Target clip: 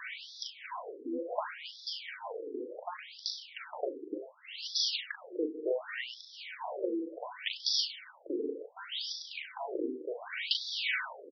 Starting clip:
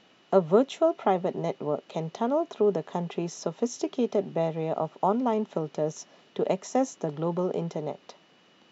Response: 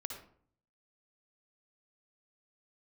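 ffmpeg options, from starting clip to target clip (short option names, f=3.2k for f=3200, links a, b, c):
-filter_complex "[0:a]areverse,acompressor=mode=upward:threshold=-29dB:ratio=2.5,areverse,crystalizer=i=4.5:c=0,asetrate=33957,aresample=44100,asplit=2[a][b];[1:a]atrim=start_sample=2205,adelay=99[c];[b][c]afir=irnorm=-1:irlink=0,volume=-12dB[d];[a][d]amix=inputs=2:normalize=0,crystalizer=i=7.5:c=0,acompressor=threshold=-27dB:ratio=16,adynamicequalizer=threshold=0.00447:dfrequency=190:dqfactor=3.6:tfrequency=190:tqfactor=3.6:attack=5:release=100:ratio=0.375:range=2:mode=cutabove:tftype=bell,asplit=2[e][f];[f]asetrate=29433,aresample=44100,atempo=1.49831,volume=-5dB[g];[e][g]amix=inputs=2:normalize=0,equalizer=f=125:t=o:w=1:g=-11,equalizer=f=500:t=o:w=1:g=5,equalizer=f=1k:t=o:w=1:g=3,equalizer=f=2k:t=o:w=1:g=6,aecho=1:1:39|71:0.562|0.224,afftfilt=real='re*between(b*sr/1024,330*pow(4800/330,0.5+0.5*sin(2*PI*0.68*pts/sr))/1.41,330*pow(4800/330,0.5+0.5*sin(2*PI*0.68*pts/sr))*1.41)':imag='im*between(b*sr/1024,330*pow(4800/330,0.5+0.5*sin(2*PI*0.68*pts/sr))/1.41,330*pow(4800/330,0.5+0.5*sin(2*PI*0.68*pts/sr))*1.41)':win_size=1024:overlap=0.75,volume=-3.5dB"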